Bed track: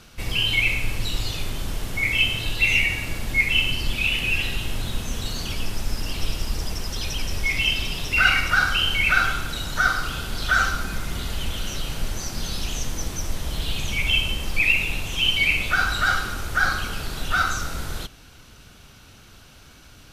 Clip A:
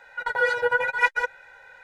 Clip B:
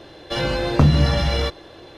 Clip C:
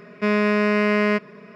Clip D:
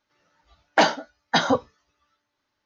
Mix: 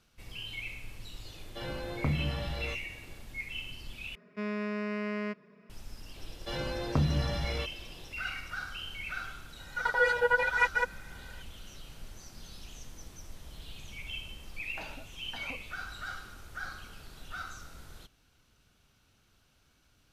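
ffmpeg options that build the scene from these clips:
-filter_complex "[2:a]asplit=2[a][b];[0:a]volume=-19.5dB[c];[a]lowpass=4.4k[d];[3:a]equalizer=f=200:t=o:w=0.77:g=3[e];[1:a]alimiter=limit=-9dB:level=0:latency=1:release=71[f];[4:a]acompressor=threshold=-34dB:ratio=6:attack=3.2:release=140:knee=1:detection=peak[g];[c]asplit=2[h][i];[h]atrim=end=4.154[j];[e]atrim=end=1.55,asetpts=PTS-STARTPTS,volume=-16.5dB[k];[i]atrim=start=5.696[l];[d]atrim=end=1.97,asetpts=PTS-STARTPTS,volume=-16dB,afade=t=in:d=0.004:c=hsin,afade=t=out:st=1.966:d=0.004:c=hsin,adelay=1250[m];[b]atrim=end=1.97,asetpts=PTS-STARTPTS,volume=-13dB,afade=t=in:d=0.004:c=hsin,afade=t=out:st=1.966:d=0.004:c=hsin,adelay=6160[n];[f]atrim=end=1.83,asetpts=PTS-STARTPTS,volume=-3.5dB,afade=t=in:d=0.004:c=hsin,afade=t=out:st=1.826:d=0.004:c=hsin,adelay=9590[o];[g]atrim=end=2.65,asetpts=PTS-STARTPTS,volume=-9.5dB,afade=t=in:d=0.004:c=hsin,afade=t=out:st=2.646:d=0.004:c=hsin,adelay=14000[p];[j][k]acrossfade=d=0.004:c1=hsin:c2=hsin[q];[q][l]acrossfade=d=0.004:c1=hsin:c2=hsin[r];[r][m][n][o][p]amix=inputs=5:normalize=0"

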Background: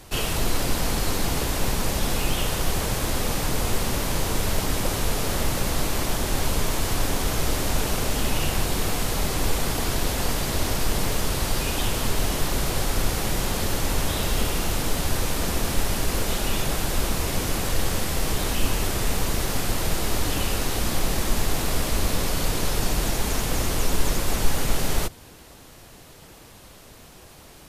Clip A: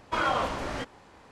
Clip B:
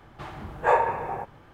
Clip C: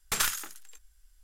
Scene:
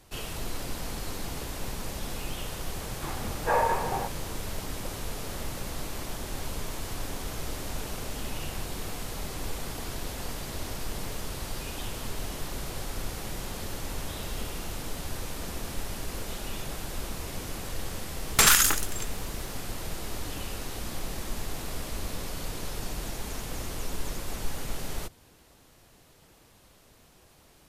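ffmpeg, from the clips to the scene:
-filter_complex "[0:a]volume=-11dB[a];[2:a]alimiter=level_in=15dB:limit=-1dB:release=50:level=0:latency=1[b];[3:a]alimiter=level_in=23dB:limit=-1dB:release=50:level=0:latency=1[c];[b]atrim=end=1.53,asetpts=PTS-STARTPTS,volume=-14.5dB,afade=t=in:d=0.004:c=hsin,afade=t=out:st=1.526:d=0.004:c=hsin,adelay=2830[d];[c]atrim=end=1.23,asetpts=PTS-STARTPTS,volume=-7dB,afade=t=in:d=0.004:c=hsin,afade=t=out:st=1.226:d=0.004:c=hsin,adelay=18270[e];[a][d][e]amix=inputs=3:normalize=0"

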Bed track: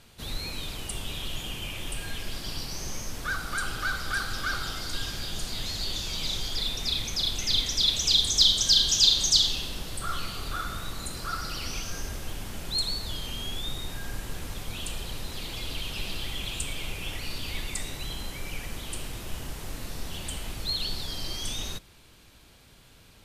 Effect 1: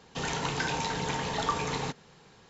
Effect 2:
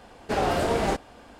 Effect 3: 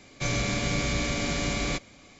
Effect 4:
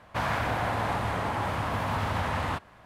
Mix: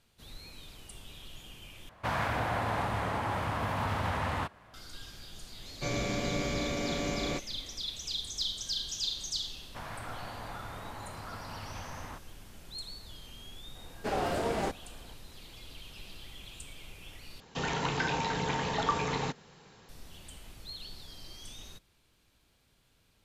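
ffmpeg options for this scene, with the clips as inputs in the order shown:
-filter_complex "[4:a]asplit=2[a][b];[0:a]volume=-14dB[c];[3:a]equalizer=f=470:t=o:w=2.4:g=8[d];[2:a]highpass=59[e];[1:a]acrossover=split=4100[f][g];[g]acompressor=threshold=-46dB:ratio=4:attack=1:release=60[h];[f][h]amix=inputs=2:normalize=0[i];[c]asplit=3[j][k][l];[j]atrim=end=1.894[m];[a]atrim=end=2.85,asetpts=PTS-STARTPTS,volume=-3dB[n];[k]atrim=start=4.736:end=17.404[o];[i]atrim=end=2.49[p];[l]atrim=start=19.886[q];[d]atrim=end=2.19,asetpts=PTS-STARTPTS,volume=-8.5dB,afade=t=in:d=0.004:c=hsin,afade=t=out:st=2.186:d=0.004:c=hsin,adelay=247401S[r];[b]atrim=end=2.85,asetpts=PTS-STARTPTS,volume=-14.5dB,afade=t=in:d=0.004:c=hsin,afade=t=out:st=2.846:d=0.004:c=hsin,adelay=9600[s];[e]atrim=end=1.39,asetpts=PTS-STARTPTS,volume=-7dB,afade=t=in:d=0.004:c=hsin,afade=t=out:st=1.386:d=0.004:c=hsin,adelay=13750[t];[m][n]acrossfade=d=0.004:c1=hsin:c2=hsin[u];[u][o]acrossfade=d=0.004:c1=hsin:c2=hsin[v];[v][p]acrossfade=d=0.004:c1=hsin:c2=hsin[w];[w][q]acrossfade=d=0.004:c1=hsin:c2=hsin[x];[x][r][s][t]amix=inputs=4:normalize=0"

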